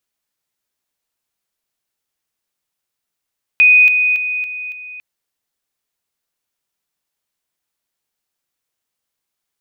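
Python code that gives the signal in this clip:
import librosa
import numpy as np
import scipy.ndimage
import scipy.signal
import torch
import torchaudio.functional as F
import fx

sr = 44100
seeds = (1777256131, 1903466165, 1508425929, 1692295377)

y = fx.level_ladder(sr, hz=2490.0, from_db=-5.5, step_db=-6.0, steps=5, dwell_s=0.28, gap_s=0.0)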